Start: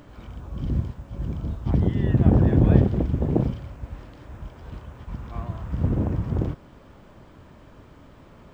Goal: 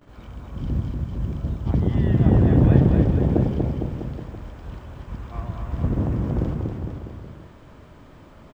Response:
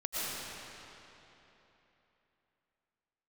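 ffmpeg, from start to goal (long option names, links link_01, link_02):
-af "aecho=1:1:240|456|650.4|825.4|982.8:0.631|0.398|0.251|0.158|0.1,agate=range=-17dB:threshold=-48dB:ratio=16:detection=peak"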